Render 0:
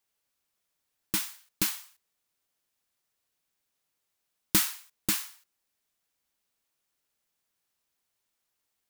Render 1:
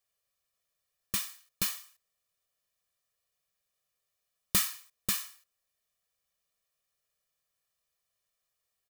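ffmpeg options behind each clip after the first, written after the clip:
-af "aecho=1:1:1.7:0.77,volume=-4.5dB"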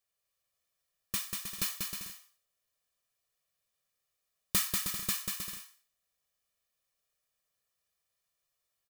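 -af "aecho=1:1:190|313.5|393.8|446|479.9:0.631|0.398|0.251|0.158|0.1,volume=-2.5dB"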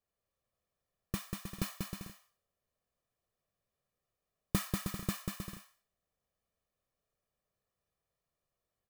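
-af "tiltshelf=f=1.3k:g=9.5,volume=-1.5dB"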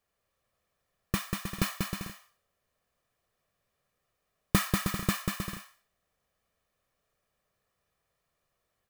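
-af "equalizer=f=1.7k:t=o:w=1.9:g=5,volume=6.5dB"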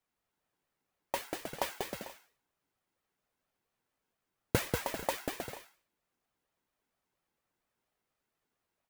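-af "aeval=exprs='val(0)*sin(2*PI*510*n/s+510*0.5/4.3*sin(2*PI*4.3*n/s))':c=same,volume=-2.5dB"

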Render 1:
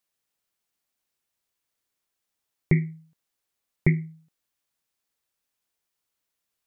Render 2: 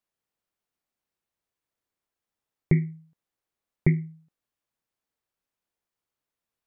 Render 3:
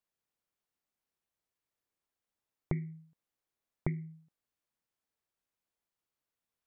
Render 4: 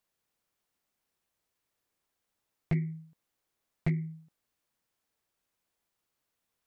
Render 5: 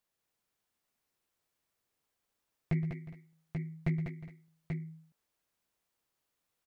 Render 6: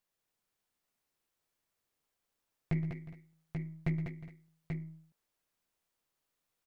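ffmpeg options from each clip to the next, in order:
-af "highshelf=f=2.1k:g=-10"
-af "acompressor=threshold=-27dB:ratio=5,volume=-3.5dB"
-af "asoftclip=type=hard:threshold=-29dB,volume=7dB"
-af "aecho=1:1:119|197|361|414|836:0.211|0.501|0.126|0.119|0.501,volume=-2.5dB"
-af "aeval=exprs='if(lt(val(0),0),0.708*val(0),val(0))':c=same"

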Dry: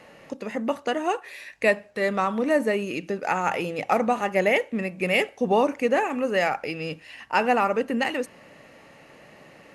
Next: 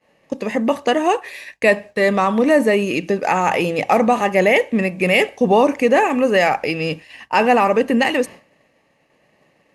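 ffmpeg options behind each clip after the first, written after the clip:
-filter_complex "[0:a]bandreject=f=1.4k:w=6.5,agate=range=-33dB:threshold=-37dB:ratio=3:detection=peak,asplit=2[a][b];[b]alimiter=limit=-17.5dB:level=0:latency=1:release=13,volume=0dB[c];[a][c]amix=inputs=2:normalize=0,volume=3.5dB"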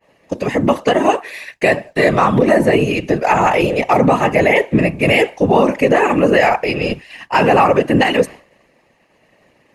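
-af "afftfilt=real='hypot(re,im)*cos(2*PI*random(0))':imag='hypot(re,im)*sin(2*PI*random(1))':win_size=512:overlap=0.75,alimiter=level_in=11dB:limit=-1dB:release=50:level=0:latency=1,adynamicequalizer=threshold=0.0355:dfrequency=3200:dqfactor=0.7:tfrequency=3200:tqfactor=0.7:attack=5:release=100:ratio=0.375:range=2:mode=cutabove:tftype=highshelf,volume=-1dB"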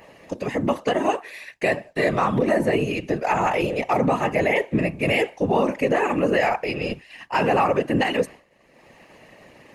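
-af "acompressor=mode=upward:threshold=-27dB:ratio=2.5,volume=-8dB"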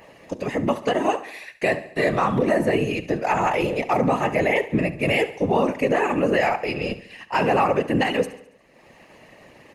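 -af "aecho=1:1:70|140|210|280|350:0.15|0.0823|0.0453|0.0249|0.0137"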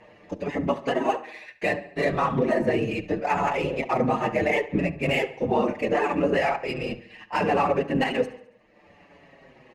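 -filter_complex "[0:a]adynamicsmooth=sensitivity=3.5:basefreq=4.4k,asplit=2[a][b];[b]adelay=6.1,afreqshift=-0.7[c];[a][c]amix=inputs=2:normalize=1"

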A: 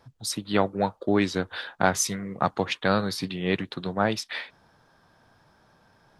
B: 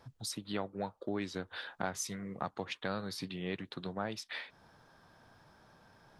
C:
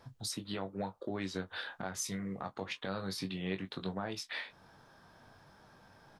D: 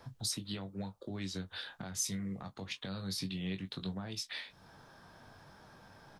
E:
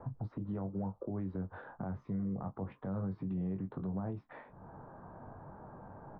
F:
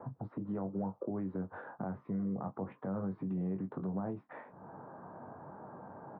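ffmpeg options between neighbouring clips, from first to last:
-af "acompressor=threshold=-42dB:ratio=2,volume=-1.5dB"
-filter_complex "[0:a]alimiter=level_in=3.5dB:limit=-24dB:level=0:latency=1:release=101,volume=-3.5dB,asplit=2[a][b];[b]aecho=0:1:21|37:0.447|0.126[c];[a][c]amix=inputs=2:normalize=0,volume=1dB"
-filter_complex "[0:a]acrossover=split=210|3000[a][b][c];[b]acompressor=threshold=-59dB:ratio=2[d];[a][d][c]amix=inputs=3:normalize=0,volume=3.5dB"
-af "lowpass=f=1.1k:w=0.5412,lowpass=f=1.1k:w=1.3066,alimiter=level_in=14.5dB:limit=-24dB:level=0:latency=1:release=44,volume=-14.5dB,volume=8dB"
-af "highpass=170,lowpass=2.2k,volume=3dB"

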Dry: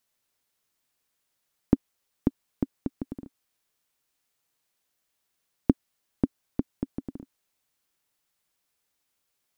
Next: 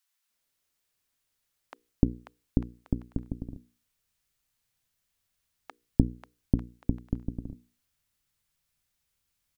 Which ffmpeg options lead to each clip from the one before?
-filter_complex "[0:a]bandreject=f=60:t=h:w=6,bandreject=f=120:t=h:w=6,bandreject=f=180:t=h:w=6,bandreject=f=240:t=h:w=6,bandreject=f=300:t=h:w=6,bandreject=f=360:t=h:w=6,bandreject=f=420:t=h:w=6,bandreject=f=480:t=h:w=6,asubboost=boost=5.5:cutoff=140,acrossover=split=830[a][b];[a]adelay=300[c];[c][b]amix=inputs=2:normalize=0,volume=-1dB"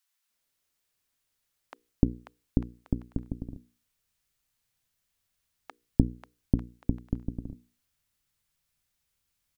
-af anull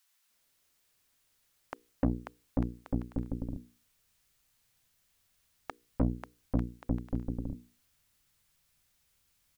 -af "aeval=exprs='(tanh(25.1*val(0)+0.45)-tanh(0.45))/25.1':c=same,volume=8dB"

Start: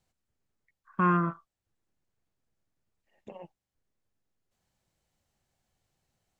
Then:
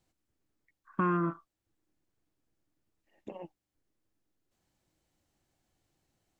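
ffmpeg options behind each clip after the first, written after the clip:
-af "acompressor=threshold=-27dB:ratio=4,equalizer=f=310:w=3.8:g=11"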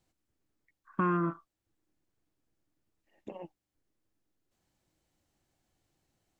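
-af anull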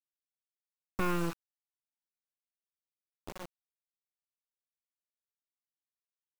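-af "acrusher=bits=4:dc=4:mix=0:aa=0.000001,volume=1dB"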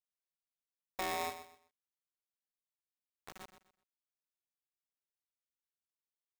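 -filter_complex "[0:a]asplit=2[a][b];[b]aecho=0:1:126|252|378:0.251|0.0678|0.0183[c];[a][c]amix=inputs=2:normalize=0,aeval=exprs='val(0)*sgn(sin(2*PI*750*n/s))':c=same,volume=-7.5dB"

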